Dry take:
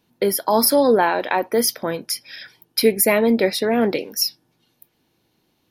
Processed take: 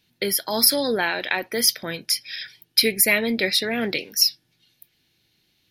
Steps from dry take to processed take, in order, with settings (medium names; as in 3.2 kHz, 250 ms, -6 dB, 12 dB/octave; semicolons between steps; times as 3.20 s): graphic EQ 250/500/1000/2000/4000 Hz -6/-6/-11/+5/+6 dB